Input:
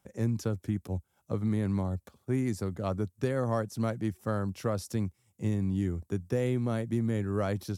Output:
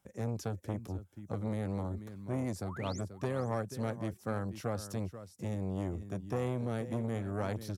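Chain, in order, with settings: painted sound rise, 2.61–3.01 s, 480–8500 Hz -44 dBFS; on a send: delay 485 ms -14 dB; on the sum: transformer saturation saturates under 580 Hz; trim -3 dB

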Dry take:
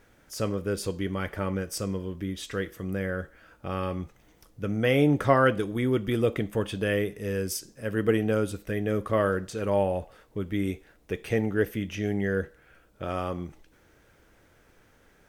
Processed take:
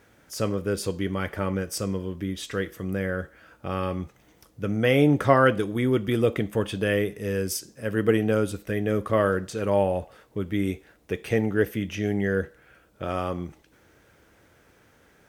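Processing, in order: high-pass 61 Hz; trim +2.5 dB

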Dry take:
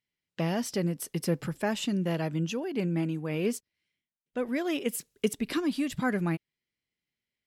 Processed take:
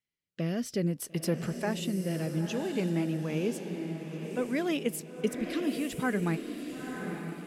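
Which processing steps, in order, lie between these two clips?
rotary cabinet horn 0.6 Hz; echo that smears into a reverb 945 ms, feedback 41%, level -6.5 dB

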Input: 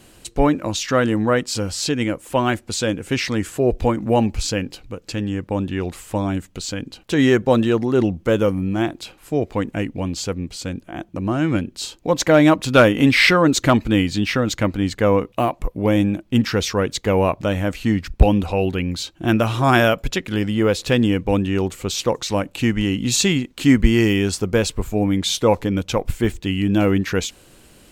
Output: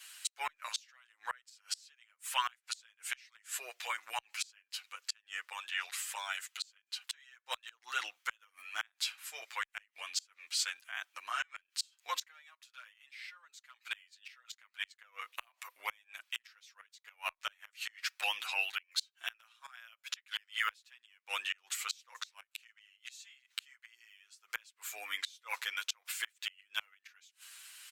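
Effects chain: high-pass 1.4 kHz 24 dB/octave; inverted gate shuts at -20 dBFS, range -34 dB; endless flanger 8.3 ms -1.3 Hz; trim +3.5 dB

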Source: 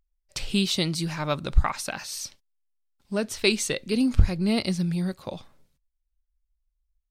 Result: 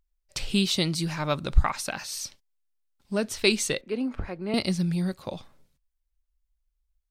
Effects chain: 3.81–4.54 s: three-band isolator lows -17 dB, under 290 Hz, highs -20 dB, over 2.3 kHz

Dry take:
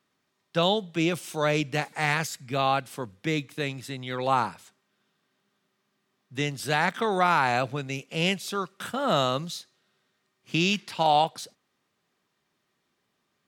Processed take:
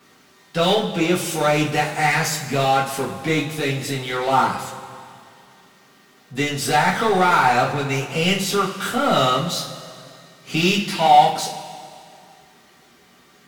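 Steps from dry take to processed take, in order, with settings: power-law waveshaper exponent 0.7; two-slope reverb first 0.29 s, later 2.4 s, from -18 dB, DRR -6 dB; trim -3 dB

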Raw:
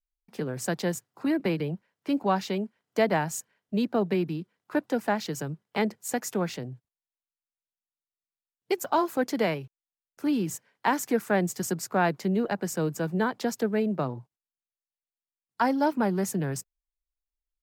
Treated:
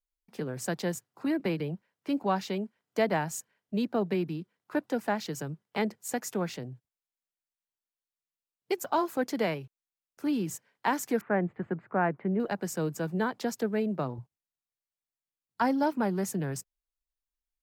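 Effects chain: 11.21–12.40 s: inverse Chebyshev low-pass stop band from 5.3 kHz, stop band 50 dB; 14.18–15.83 s: peaking EQ 74 Hz +7 dB 2.7 oct; trim -3 dB

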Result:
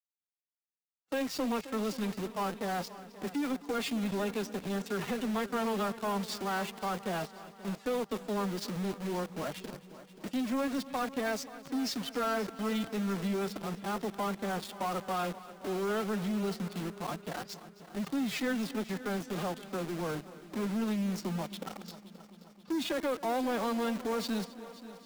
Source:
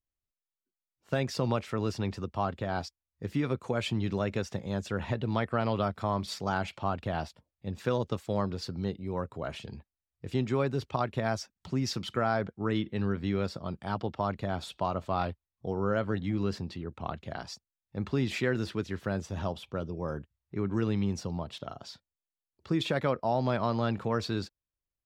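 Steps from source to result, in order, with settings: expander -53 dBFS; formant-preserving pitch shift +12 st; in parallel at -3 dB: companded quantiser 2-bit; on the sum: multi-head delay 265 ms, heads first and second, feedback 58%, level -19 dB; trim -8.5 dB

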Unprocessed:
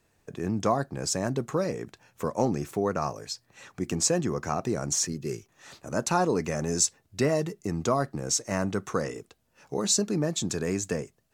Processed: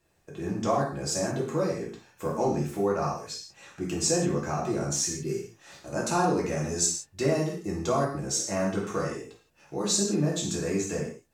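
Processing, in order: gated-style reverb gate 200 ms falling, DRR -4.5 dB; trim -6 dB

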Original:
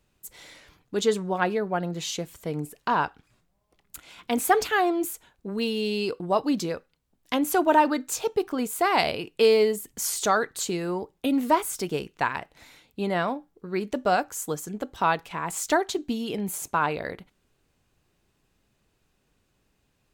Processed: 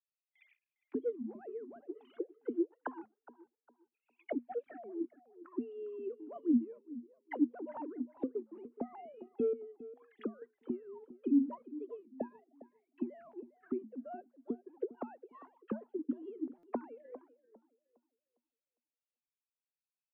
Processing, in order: formants replaced by sine waves; gate with hold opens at -48 dBFS; waveshaping leveller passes 1; 9.53–10.42 s: compression 4:1, threshold -28 dBFS, peak gain reduction 14 dB; auto-wah 240–2600 Hz, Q 17, down, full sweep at -26.5 dBFS; distance through air 160 m; on a send: filtered feedback delay 405 ms, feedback 29%, low-pass 2.1 kHz, level -16.5 dB; on the sum: buffer glitch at 16.58 s, samples 256, times 8; warped record 33 1/3 rpm, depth 160 cents; trim +6.5 dB

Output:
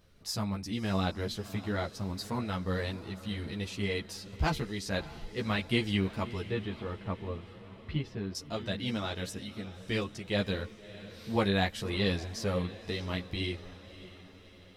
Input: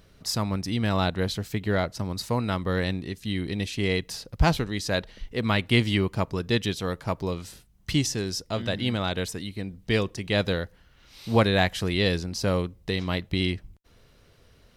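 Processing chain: 6.43–8.35 s: distance through air 430 m; on a send: echo that smears into a reverb 606 ms, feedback 54%, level -15.5 dB; on the sum: three-phase chorus; trim -4 dB

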